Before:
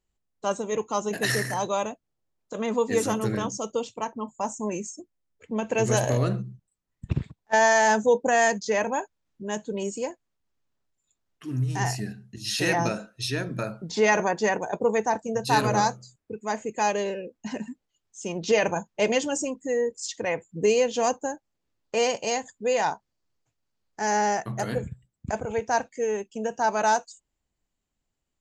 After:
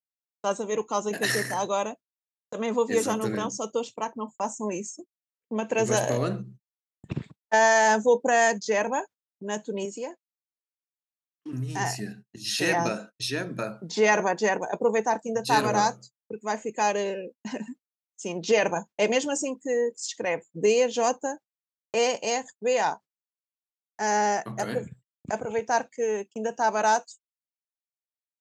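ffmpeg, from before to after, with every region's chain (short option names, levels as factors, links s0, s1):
-filter_complex "[0:a]asettb=1/sr,asplit=3[s0][s1][s2];[s0]atrim=end=9.854[s3];[s1]atrim=start=9.85:end=11.53,asetpts=PTS-STARTPTS,afade=t=in:d=0.004:c=qsin,afade=t=out:st=1.676:d=0.004:c=qsin,highpass=170,lowpass=6700,acompressor=threshold=0.0178:ratio=1.5:attack=3.2:release=140:knee=1:detection=peak[s4];[s2]atrim=start=11.526[s5];[s3][s4]acrossfade=d=0.004:c1=hsin:c2=qsin[s6];[s6][s5]acrossfade=d=0.004:c1=qsin:c2=hsin,agate=range=0.00631:threshold=0.00794:ratio=16:detection=peak,highpass=170"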